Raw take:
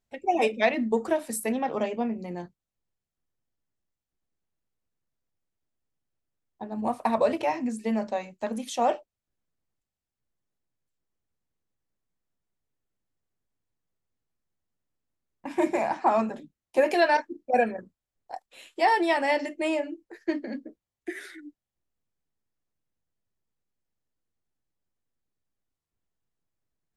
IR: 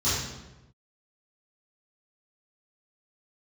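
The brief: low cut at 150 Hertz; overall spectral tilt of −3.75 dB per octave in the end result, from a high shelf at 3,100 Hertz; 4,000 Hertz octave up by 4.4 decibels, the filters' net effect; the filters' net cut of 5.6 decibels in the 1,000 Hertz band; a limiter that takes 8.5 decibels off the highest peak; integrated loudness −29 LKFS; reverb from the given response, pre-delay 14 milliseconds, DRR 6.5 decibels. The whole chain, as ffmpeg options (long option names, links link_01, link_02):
-filter_complex "[0:a]highpass=150,equalizer=frequency=1000:width_type=o:gain=-8.5,highshelf=frequency=3100:gain=3.5,equalizer=frequency=4000:width_type=o:gain=3.5,alimiter=limit=-19dB:level=0:latency=1,asplit=2[link_01][link_02];[1:a]atrim=start_sample=2205,adelay=14[link_03];[link_02][link_03]afir=irnorm=-1:irlink=0,volume=-19dB[link_04];[link_01][link_04]amix=inputs=2:normalize=0,volume=1dB"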